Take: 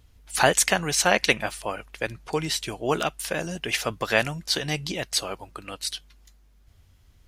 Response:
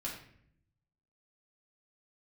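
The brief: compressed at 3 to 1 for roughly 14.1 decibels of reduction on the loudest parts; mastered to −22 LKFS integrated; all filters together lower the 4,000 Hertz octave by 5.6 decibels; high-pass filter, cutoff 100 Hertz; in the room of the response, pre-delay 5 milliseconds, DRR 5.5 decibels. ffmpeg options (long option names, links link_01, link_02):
-filter_complex "[0:a]highpass=100,equalizer=frequency=4000:width_type=o:gain=-7.5,acompressor=threshold=-34dB:ratio=3,asplit=2[link_01][link_02];[1:a]atrim=start_sample=2205,adelay=5[link_03];[link_02][link_03]afir=irnorm=-1:irlink=0,volume=-6.5dB[link_04];[link_01][link_04]amix=inputs=2:normalize=0,volume=13.5dB"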